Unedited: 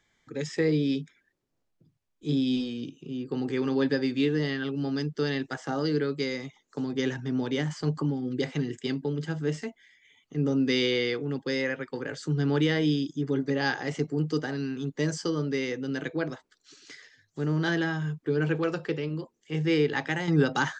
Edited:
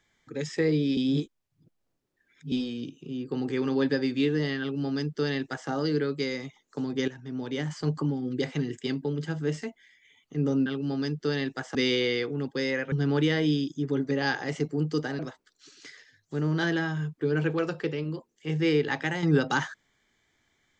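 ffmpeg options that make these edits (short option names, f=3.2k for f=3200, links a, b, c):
-filter_complex "[0:a]asplit=8[a][b][c][d][e][f][g][h];[a]atrim=end=0.972[i];[b]atrim=start=0.968:end=2.522,asetpts=PTS-STARTPTS,areverse[j];[c]atrim=start=2.518:end=7.08,asetpts=PTS-STARTPTS,afade=t=out:st=4.558:d=0.004:c=hsin:silence=0.237137[k];[d]atrim=start=7.08:end=10.662,asetpts=PTS-STARTPTS,afade=t=in:d=0.77:silence=0.237137[l];[e]atrim=start=4.598:end=5.692[m];[f]atrim=start=10.658:end=11.832[n];[g]atrim=start=12.308:end=14.582[o];[h]atrim=start=16.238[p];[i][j]acrossfade=d=0.004:c1=hsin:c2=hsin[q];[k][l]concat=n=2:v=0:a=1[r];[q][r]acrossfade=d=0.004:c1=hsin:c2=hsin[s];[s][m]acrossfade=d=0.004:c1=hsin:c2=hsin[t];[t][n]acrossfade=d=0.004:c1=hsin:c2=hsin[u];[u][o]acrossfade=d=0.004:c1=hsin:c2=hsin[v];[v][p]acrossfade=d=0.004:c1=hsin:c2=hsin"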